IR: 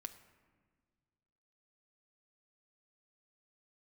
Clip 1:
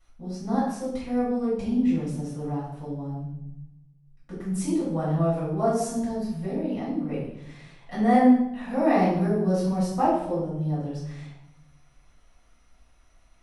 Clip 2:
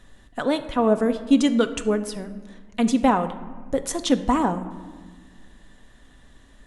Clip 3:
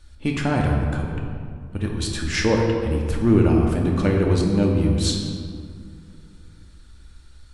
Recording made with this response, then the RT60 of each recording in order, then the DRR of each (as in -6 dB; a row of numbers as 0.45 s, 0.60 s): 2; 0.80 s, 1.7 s, 2.3 s; -9.5 dB, 8.0 dB, -0.5 dB